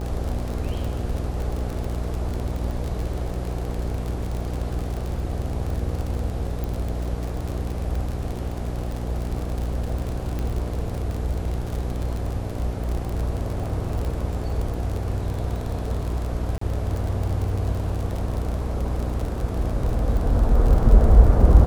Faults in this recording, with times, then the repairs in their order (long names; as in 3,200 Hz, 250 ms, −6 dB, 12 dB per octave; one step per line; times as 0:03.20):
mains buzz 60 Hz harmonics 14 −28 dBFS
surface crackle 40 per second −26 dBFS
0:06.64: click
0:10.39: click −17 dBFS
0:16.58–0:16.61: drop-out 34 ms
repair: click removal
hum removal 60 Hz, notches 14
repair the gap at 0:16.58, 34 ms